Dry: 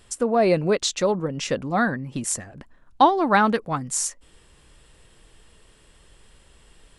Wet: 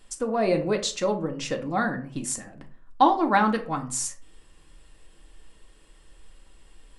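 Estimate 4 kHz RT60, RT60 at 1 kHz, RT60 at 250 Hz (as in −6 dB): 0.25 s, 0.40 s, 0.50 s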